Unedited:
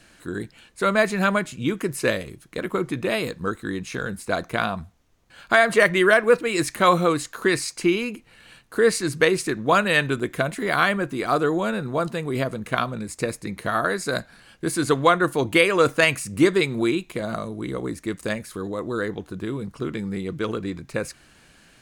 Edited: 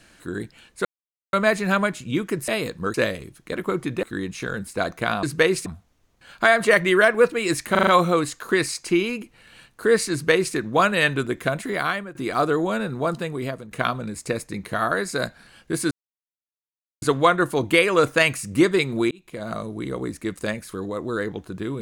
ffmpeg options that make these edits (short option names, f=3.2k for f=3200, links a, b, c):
-filter_complex "[0:a]asplit=15[a][b][c][d][e][f][g][h][i][j][k][l][m][n][o];[a]atrim=end=0.85,asetpts=PTS-STARTPTS,afade=t=out:st=0.846:d=0.004:c=hsin,apad=pad_dur=0.48[p];[b]atrim=start=0.85:end=2.002,asetpts=PTS-STARTPTS,afade=t=in:d=0.004:c=hsin[q];[c]atrim=start=3.088:end=3.552[r];[d]atrim=start=1.998:end=3.092[s];[e]atrim=start=3.548:end=4.752[t];[f]atrim=start=9.048:end=9.482[u];[g]atrim=start=4.748:end=6.842[v];[h]atrim=start=6.798:end=6.842[w];[i]atrim=start=6.798:end=6.842[x];[j]atrim=start=6.798:end=6.842[y];[k]atrim=start=6.798:end=11.08,asetpts=PTS-STARTPTS,afade=t=out:st=3.782:d=0.5:silence=0.141254[z];[l]atrim=start=11.08:end=12.64,asetpts=PTS-STARTPTS,afade=t=in:d=0.004:c=hsin:silence=0.141254,afade=t=out:st=1.07:d=0.49:silence=0.266073[aa];[m]atrim=start=12.64:end=14.84,asetpts=PTS-STARTPTS,afade=t=in:d=0.004:c=hsin:silence=0.266073,afade=t=out:st=2.196:d=0.004:c=hsin,apad=pad_dur=1.11[ab];[n]atrim=start=14.84:end=16.93,asetpts=PTS-STARTPTS,afade=t=in:d=0.004:c=hsin,afade=t=out:st=2.086:d=0.004:c=hsin[ac];[o]atrim=start=16.93,asetpts=PTS-STARTPTS,afade=t=in:d=0.48[ad];[p][q]concat=n=2:v=0:a=1[ae];[ae][r]acrossfade=d=0.004:c1=hsin:c2=hsin[af];[af][s]acrossfade=d=0.004:c1=hsin:c2=hsin[ag];[ag][t]acrossfade=d=0.004:c1=hsin:c2=hsin[ah];[ah][u]acrossfade=d=0.004:c1=hsin:c2=hsin[ai];[ai][v]acrossfade=d=0.004:c1=hsin:c2=hsin[aj];[aj][w]acrossfade=d=0.004:c1=hsin:c2=hsin[ak];[ak][x]acrossfade=d=0.004:c1=hsin:c2=hsin[al];[al][y]acrossfade=d=0.004:c1=hsin:c2=hsin[am];[z][aa][ab][ac][ad]concat=n=5:v=0:a=1[an];[am][an]acrossfade=d=0.004:c1=hsin:c2=hsin"